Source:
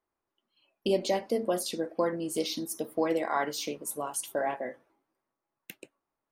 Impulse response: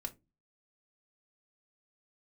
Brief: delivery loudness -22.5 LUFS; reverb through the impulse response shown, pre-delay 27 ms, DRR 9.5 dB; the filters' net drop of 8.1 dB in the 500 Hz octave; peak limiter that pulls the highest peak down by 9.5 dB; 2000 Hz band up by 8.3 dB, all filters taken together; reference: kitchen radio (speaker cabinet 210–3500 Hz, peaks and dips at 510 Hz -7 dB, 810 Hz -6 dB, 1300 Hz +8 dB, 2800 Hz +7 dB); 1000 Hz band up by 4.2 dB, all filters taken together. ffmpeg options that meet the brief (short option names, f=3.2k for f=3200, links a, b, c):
-filter_complex "[0:a]equalizer=f=500:t=o:g=-8,equalizer=f=1k:t=o:g=7,equalizer=f=2k:t=o:g=5.5,alimiter=limit=-21dB:level=0:latency=1,asplit=2[a][b];[1:a]atrim=start_sample=2205,adelay=27[c];[b][c]afir=irnorm=-1:irlink=0,volume=-8dB[d];[a][d]amix=inputs=2:normalize=0,highpass=210,equalizer=f=510:t=q:w=4:g=-7,equalizer=f=810:t=q:w=4:g=-6,equalizer=f=1.3k:t=q:w=4:g=8,equalizer=f=2.8k:t=q:w=4:g=7,lowpass=f=3.5k:w=0.5412,lowpass=f=3.5k:w=1.3066,volume=12dB"